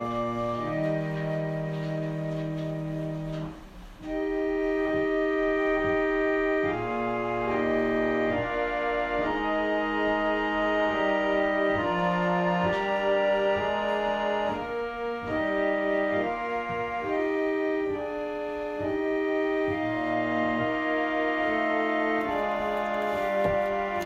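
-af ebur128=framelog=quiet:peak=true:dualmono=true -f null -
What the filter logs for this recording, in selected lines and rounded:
Integrated loudness:
  I:         -24.3 LUFS
  Threshold: -34.3 LUFS
Loudness range:
  LRA:         4.9 LU
  Threshold: -44.2 LUFS
  LRA low:   -27.4 LUFS
  LRA high:  -22.5 LUFS
True peak:
  Peak:      -13.3 dBFS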